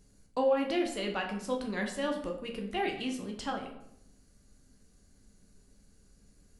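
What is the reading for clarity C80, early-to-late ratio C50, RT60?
10.0 dB, 7.0 dB, 0.80 s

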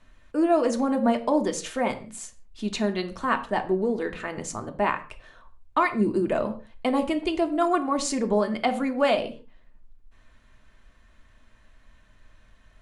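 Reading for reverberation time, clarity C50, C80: no single decay rate, 13.5 dB, 18.0 dB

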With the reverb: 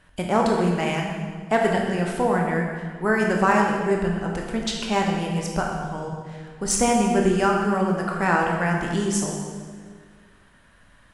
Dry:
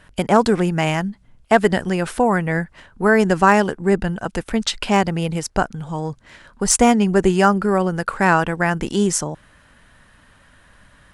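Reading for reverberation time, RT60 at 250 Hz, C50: 1.8 s, 2.0 s, 2.0 dB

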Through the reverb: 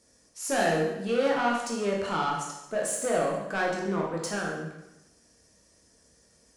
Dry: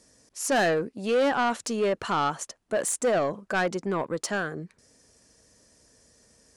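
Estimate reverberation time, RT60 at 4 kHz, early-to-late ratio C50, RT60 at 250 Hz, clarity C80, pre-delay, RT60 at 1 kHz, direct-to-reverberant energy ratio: 0.95 s, 0.90 s, 3.0 dB, 1.0 s, 5.5 dB, 6 ms, 0.95 s, -2.5 dB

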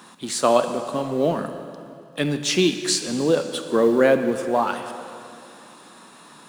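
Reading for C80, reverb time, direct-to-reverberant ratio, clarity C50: 9.5 dB, 2.6 s, 7.5 dB, 8.5 dB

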